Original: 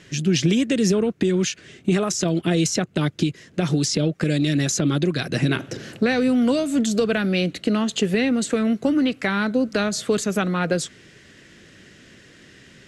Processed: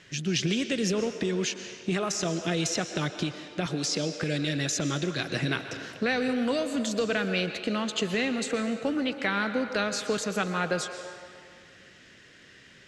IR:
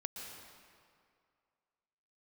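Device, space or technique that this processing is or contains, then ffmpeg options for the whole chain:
filtered reverb send: -filter_complex "[0:a]asettb=1/sr,asplit=3[link_01][link_02][link_03];[link_01]atrim=end=3.664[link_04];[link_02]atrim=start=3.66:end=4.23,asetpts=PTS-STARTPTS,afade=type=in:duration=0.004:curve=qsin,afade=type=out:start_time=0.566:duration=0.004:curve=qsin,highpass=160[link_05];[link_03]atrim=start=4.226[link_06];[link_04][link_05]acrossfade=duration=0.004:curve1=hsin:curve2=qsin[link_07];[link_07][link_06]acrossfade=duration=0.004:curve1=qsin:curve2=hsin,asplit=2[link_08][link_09];[link_09]highpass=480,lowpass=7500[link_10];[1:a]atrim=start_sample=2205[link_11];[link_10][link_11]afir=irnorm=-1:irlink=0,volume=1.5dB[link_12];[link_08][link_12]amix=inputs=2:normalize=0,volume=-8.5dB"

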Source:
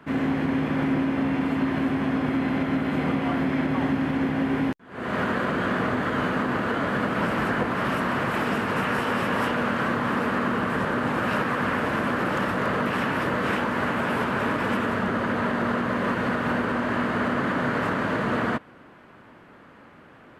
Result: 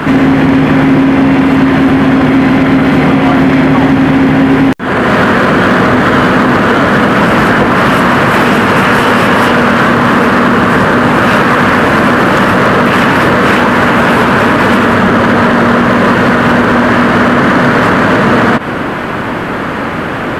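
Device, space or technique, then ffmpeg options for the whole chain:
loud club master: -af "acompressor=threshold=-27dB:ratio=2.5,asoftclip=type=hard:threshold=-24dB,alimiter=level_in=35.5dB:limit=-1dB:release=50:level=0:latency=1,volume=-1dB"

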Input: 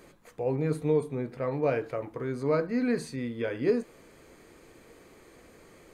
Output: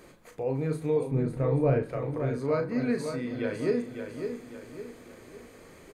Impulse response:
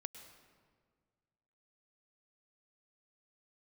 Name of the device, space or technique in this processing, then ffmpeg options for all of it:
ducked reverb: -filter_complex "[0:a]asplit=2[link_01][link_02];[link_02]adelay=37,volume=-7dB[link_03];[link_01][link_03]amix=inputs=2:normalize=0,asettb=1/sr,asplit=3[link_04][link_05][link_06];[link_04]atrim=end=1.114[link_07];[link_05]atrim=start=1.11:end=1.83,asetpts=PTS-STARTPTS,afade=type=in:duration=0.004:curve=qsin,afade=type=out:start_time=0.716:duration=0.004:curve=qsin,aemphasis=mode=reproduction:type=riaa[link_08];[link_06]atrim=start=1.826[link_09];[link_07][link_08]acrossfade=duration=0.004:curve1=hsin:curve2=qsin[link_10];[link_10][link_09]acrossfade=duration=0.004:curve1=qsin:curve2=hsin,asplit=3[link_11][link_12][link_13];[1:a]atrim=start_sample=2205[link_14];[link_12][link_14]afir=irnorm=-1:irlink=0[link_15];[link_13]apad=whole_len=263248[link_16];[link_15][link_16]sidechaincompress=threshold=-36dB:ratio=8:attack=16:release=407,volume=1.5dB[link_17];[link_11][link_17]amix=inputs=2:normalize=0,aecho=1:1:553|1106|1659|2212|2765:0.422|0.177|0.0744|0.0312|0.0131,volume=-3.5dB"

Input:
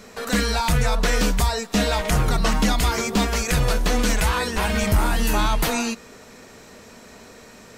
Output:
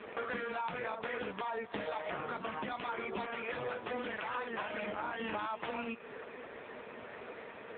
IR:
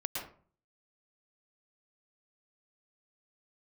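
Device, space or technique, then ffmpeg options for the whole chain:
voicemail: -af "highpass=340,lowpass=3100,acompressor=threshold=-36dB:ratio=10,volume=3.5dB" -ar 8000 -c:a libopencore_amrnb -b:a 5900

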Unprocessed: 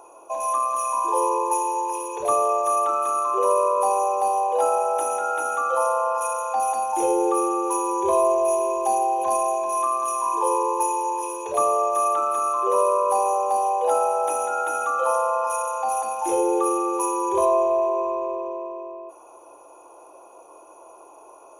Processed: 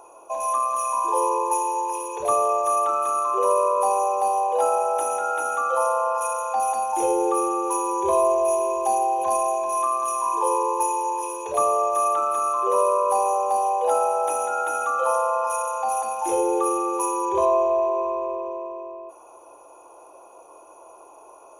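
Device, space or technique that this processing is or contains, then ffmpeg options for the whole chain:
low shelf boost with a cut just above: -filter_complex "[0:a]asettb=1/sr,asplit=3[link_01][link_02][link_03];[link_01]atrim=end=17.254[link_04];[link_02]atrim=start=17.25:end=18.47,asetpts=PTS-STARTPTS,afade=type=in:duration=0.004:curve=qsin,afade=type=out:start_time=1.216:duration=0.004:curve=qsin,lowpass=6500[link_05];[link_03]atrim=start=18.466[link_06];[link_04][link_05]acrossfade=duration=0.004:curve1=hsin:curve2=qsin[link_07];[link_07][link_06]acrossfade=duration=0.004:curve1=qsin:curve2=hsin,lowshelf=frequency=65:gain=6,equalizer=frequency=320:width_type=o:width=0.62:gain=-2.5"

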